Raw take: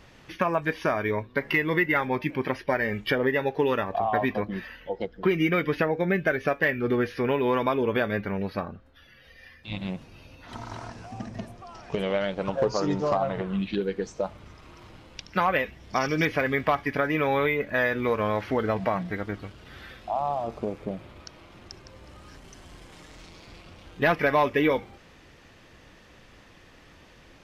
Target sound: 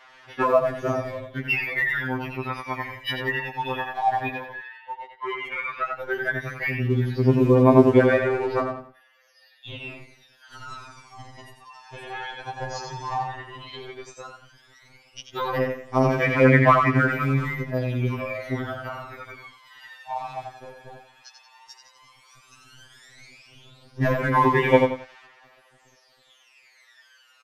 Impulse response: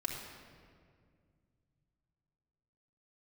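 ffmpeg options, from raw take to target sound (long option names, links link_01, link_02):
-filter_complex "[0:a]asettb=1/sr,asplit=3[link_01][link_02][link_03];[link_01]atrim=end=4.534[link_04];[link_02]atrim=start=4.53:end=5.97,asetpts=PTS-STARTPTS,afade=type=in:duration=0.004:curve=qsin,afade=type=out:start_time=1.436:duration=0.004:curve=qsin,acrossover=split=310 3400:gain=0.2 1 0.0794[link_05][link_06][link_07];[link_05][link_06][link_07]amix=inputs=3:normalize=0[link_08];[link_03]atrim=start=5.966[link_09];[link_04][link_08]acrossfade=duration=0.004:curve1=hsin:curve2=qsin[link_10];[link_10][link_09]acrossfade=duration=0.004:curve1=qsin:curve2=hsin,bandreject=frequency=50:width_type=h:width=6,bandreject=frequency=100:width_type=h:width=6,bandreject=frequency=150:width_type=h:width=6,bandreject=frequency=200:width_type=h:width=6,bandreject=frequency=250:width_type=h:width=6,asplit=2[link_11][link_12];[link_12]aecho=0:1:89|178|267|356:0.562|0.186|0.0612|0.0202[link_13];[link_11][link_13]amix=inputs=2:normalize=0,aphaser=in_gain=1:out_gain=1:delay=1.2:decay=0.79:speed=0.12:type=sinusoidal,acrossover=split=670|4600[link_14][link_15][link_16];[link_14]aeval=exprs='sgn(val(0))*max(abs(val(0))-0.0178,0)':channel_layout=same[link_17];[link_17][link_15][link_16]amix=inputs=3:normalize=0,aresample=32000,aresample=44100,afftfilt=real='re*2.45*eq(mod(b,6),0)':imag='im*2.45*eq(mod(b,6),0)':win_size=2048:overlap=0.75,volume=-2dB"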